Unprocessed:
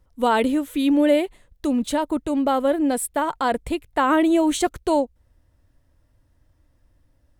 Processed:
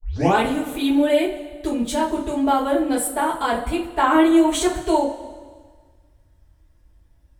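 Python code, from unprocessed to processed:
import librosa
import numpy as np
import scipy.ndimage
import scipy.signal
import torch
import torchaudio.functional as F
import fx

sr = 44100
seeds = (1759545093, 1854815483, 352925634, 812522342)

y = fx.tape_start_head(x, sr, length_s=0.36)
y = fx.wow_flutter(y, sr, seeds[0], rate_hz=2.1, depth_cents=15.0)
y = fx.rev_double_slope(y, sr, seeds[1], early_s=0.25, late_s=1.6, knee_db=-18, drr_db=-9.0)
y = F.gain(torch.from_numpy(y), -7.5).numpy()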